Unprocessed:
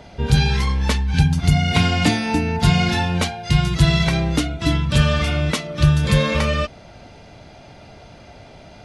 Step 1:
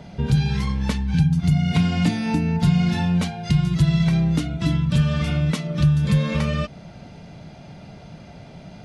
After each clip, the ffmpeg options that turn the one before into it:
ffmpeg -i in.wav -af "equalizer=frequency=170:width_type=o:width=0.86:gain=13,acompressor=threshold=-18dB:ratio=2,volume=-3dB" out.wav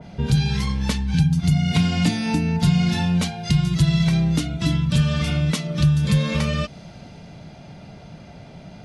ffmpeg -i in.wav -af "adynamicequalizer=threshold=0.00447:dfrequency=2800:dqfactor=0.7:tfrequency=2800:tqfactor=0.7:attack=5:release=100:ratio=0.375:range=3:mode=boostabove:tftype=highshelf" out.wav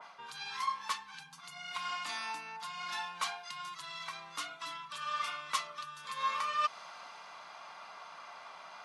ffmpeg -i in.wav -af "areverse,acompressor=threshold=-27dB:ratio=10,areverse,highpass=frequency=1100:width_type=q:width=8,volume=-3.5dB" out.wav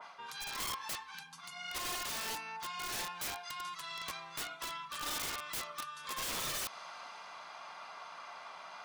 ffmpeg -i in.wav -af "bandreject=frequency=50:width_type=h:width=6,bandreject=frequency=100:width_type=h:width=6,bandreject=frequency=150:width_type=h:width=6,bandreject=frequency=200:width_type=h:width=6,aeval=exprs='(mod(50.1*val(0)+1,2)-1)/50.1':channel_layout=same,volume=1dB" out.wav

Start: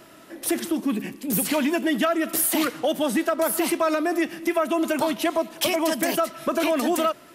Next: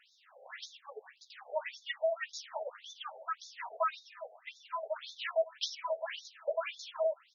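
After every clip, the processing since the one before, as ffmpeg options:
ffmpeg -i in.wav -filter_complex "[0:a]asplit=2[link_01][link_02];[link_02]adelay=14,volume=-4dB[link_03];[link_01][link_03]amix=inputs=2:normalize=0,afftfilt=real='re*between(b*sr/1024,580*pow(5000/580,0.5+0.5*sin(2*PI*1.8*pts/sr))/1.41,580*pow(5000/580,0.5+0.5*sin(2*PI*1.8*pts/sr))*1.41)':imag='im*between(b*sr/1024,580*pow(5000/580,0.5+0.5*sin(2*PI*1.8*pts/sr))/1.41,580*pow(5000/580,0.5+0.5*sin(2*PI*1.8*pts/sr))*1.41)':win_size=1024:overlap=0.75,volume=-8dB" out.wav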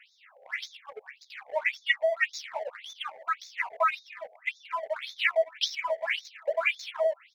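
ffmpeg -i in.wav -filter_complex "[0:a]asplit=2[link_01][link_02];[link_02]aeval=exprs='sgn(val(0))*max(abs(val(0))-0.00316,0)':channel_layout=same,volume=-3dB[link_03];[link_01][link_03]amix=inputs=2:normalize=0,equalizer=frequency=2200:width_type=o:width=0.67:gain=15" out.wav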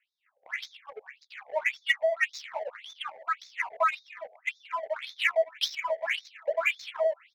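ffmpeg -i in.wav -filter_complex "[0:a]agate=range=-20dB:threshold=-53dB:ratio=16:detection=peak,acrossover=split=630[link_01][link_02];[link_02]adynamicsmooth=sensitivity=6.5:basefreq=4900[link_03];[link_01][link_03]amix=inputs=2:normalize=0" out.wav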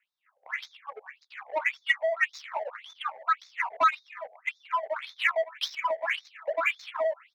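ffmpeg -i in.wav -filter_complex "[0:a]equalizer=frequency=1100:width=0.86:gain=11.5,acrossover=split=1400[link_01][link_02];[link_01]asoftclip=type=tanh:threshold=-17.5dB[link_03];[link_03][link_02]amix=inputs=2:normalize=0,volume=-4.5dB" out.wav

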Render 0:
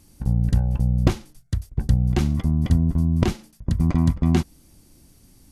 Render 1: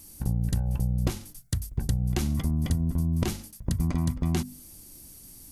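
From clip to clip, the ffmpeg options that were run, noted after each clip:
ffmpeg -i in.wav -af "aemphasis=mode=production:type=50fm,bandreject=frequency=50:width_type=h:width=6,bandreject=frequency=100:width_type=h:width=6,bandreject=frequency=150:width_type=h:width=6,bandreject=frequency=200:width_type=h:width=6,bandreject=frequency=250:width_type=h:width=6,acompressor=threshold=-23dB:ratio=4" out.wav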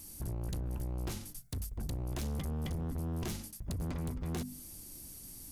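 ffmpeg -i in.wav -filter_complex "[0:a]asplit=2[link_01][link_02];[link_02]alimiter=limit=-23dB:level=0:latency=1:release=218,volume=1dB[link_03];[link_01][link_03]amix=inputs=2:normalize=0,asoftclip=type=hard:threshold=-26.5dB,volume=-7.5dB" out.wav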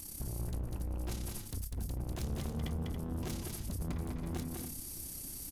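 ffmpeg -i in.wav -filter_complex "[0:a]acompressor=threshold=-41dB:ratio=6,tremolo=f=33:d=0.621,asplit=2[link_01][link_02];[link_02]aecho=0:1:198.3|279.9:0.631|0.355[link_03];[link_01][link_03]amix=inputs=2:normalize=0,volume=6dB" out.wav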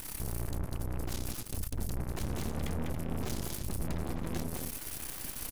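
ffmpeg -i in.wav -af "aeval=exprs='0.0376*(cos(1*acos(clip(val(0)/0.0376,-1,1)))-cos(1*PI/2))+0.0133*(cos(6*acos(clip(val(0)/0.0376,-1,1)))-cos(6*PI/2))':channel_layout=same" out.wav

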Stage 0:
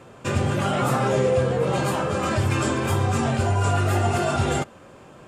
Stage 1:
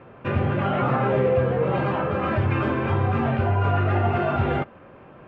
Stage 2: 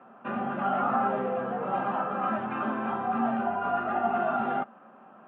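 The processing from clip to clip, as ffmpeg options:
ffmpeg -i in.wav -af "lowpass=frequency=2600:width=0.5412,lowpass=frequency=2600:width=1.3066" out.wav
ffmpeg -i in.wav -af "highpass=frequency=210:width=0.5412,highpass=frequency=210:width=1.3066,equalizer=frequency=220:width_type=q:width=4:gain=10,equalizer=frequency=320:width_type=q:width=4:gain=-7,equalizer=frequency=480:width_type=q:width=4:gain=-6,equalizer=frequency=760:width_type=q:width=4:gain=10,equalizer=frequency=1300:width_type=q:width=4:gain=8,equalizer=frequency=2200:width_type=q:width=4:gain=-8,lowpass=frequency=3200:width=0.5412,lowpass=frequency=3200:width=1.3066,volume=-7.5dB" out.wav

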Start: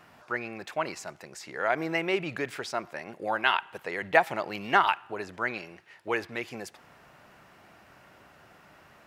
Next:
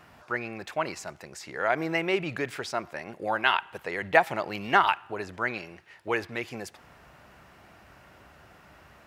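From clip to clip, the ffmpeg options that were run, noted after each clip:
ffmpeg -i in.wav -af "equalizer=frequency=60:width_type=o:width=1.2:gain=11,volume=1dB" out.wav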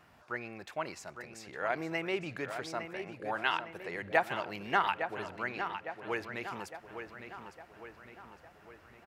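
ffmpeg -i in.wav -filter_complex "[0:a]asplit=2[link_01][link_02];[link_02]adelay=858,lowpass=frequency=4000:poles=1,volume=-8dB,asplit=2[link_03][link_04];[link_04]adelay=858,lowpass=frequency=4000:poles=1,volume=0.54,asplit=2[link_05][link_06];[link_06]adelay=858,lowpass=frequency=4000:poles=1,volume=0.54,asplit=2[link_07][link_08];[link_08]adelay=858,lowpass=frequency=4000:poles=1,volume=0.54,asplit=2[link_09][link_10];[link_10]adelay=858,lowpass=frequency=4000:poles=1,volume=0.54,asplit=2[link_11][link_12];[link_12]adelay=858,lowpass=frequency=4000:poles=1,volume=0.54[link_13];[link_01][link_03][link_05][link_07][link_09][link_11][link_13]amix=inputs=7:normalize=0,volume=-7.5dB" out.wav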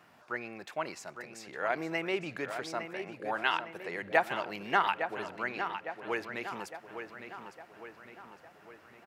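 ffmpeg -i in.wav -af "highpass=150,volume=1.5dB" out.wav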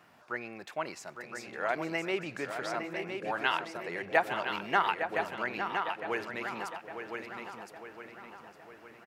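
ffmpeg -i in.wav -af "aecho=1:1:1014:0.473" out.wav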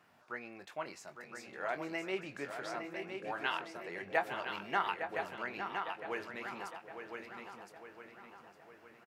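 ffmpeg -i in.wav -filter_complex "[0:a]asplit=2[link_01][link_02];[link_02]adelay=21,volume=-9dB[link_03];[link_01][link_03]amix=inputs=2:normalize=0,volume=-6.5dB" out.wav

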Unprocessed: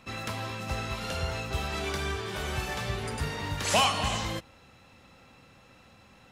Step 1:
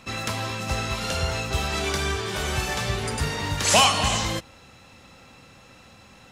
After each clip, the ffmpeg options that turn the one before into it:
ffmpeg -i in.wav -af "equalizer=frequency=6900:width_type=o:width=1.4:gain=5,volume=5.5dB" out.wav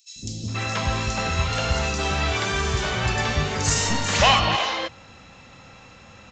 ffmpeg -i in.wav -filter_complex "[0:a]aresample=16000,aeval=exprs='clip(val(0),-1,0.0891)':channel_layout=same,aresample=44100,acrossover=split=340|4800[link_01][link_02][link_03];[link_01]adelay=160[link_04];[link_02]adelay=480[link_05];[link_04][link_05][link_03]amix=inputs=3:normalize=0,volume=4dB" out.wav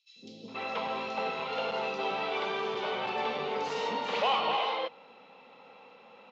ffmpeg -i in.wav -af "volume=18.5dB,asoftclip=hard,volume=-18.5dB,highpass=frequency=230:width=0.5412,highpass=frequency=230:width=1.3066,equalizer=frequency=320:width_type=q:width=4:gain=-7,equalizer=frequency=460:width_type=q:width=4:gain=10,equalizer=frequency=870:width_type=q:width=4:gain=7,equalizer=frequency=1700:width_type=q:width=4:gain=-9,lowpass=frequency=3700:width=0.5412,lowpass=frequency=3700:width=1.3066,volume=-7dB" out.wav

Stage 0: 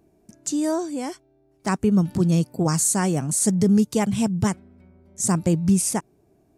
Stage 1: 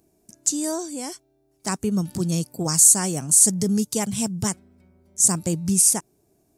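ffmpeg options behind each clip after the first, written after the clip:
ffmpeg -i in.wav -af "bass=frequency=250:gain=-1,treble=frequency=4000:gain=13,volume=-4dB" out.wav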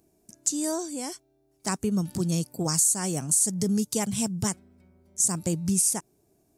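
ffmpeg -i in.wav -af "acompressor=threshold=-19dB:ratio=3,volume=-2dB" out.wav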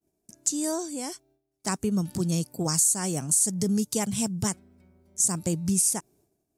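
ffmpeg -i in.wav -af "agate=range=-33dB:threshold=-58dB:ratio=3:detection=peak" out.wav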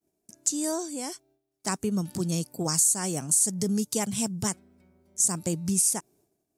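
ffmpeg -i in.wav -af "lowshelf=frequency=100:gain=-9" out.wav

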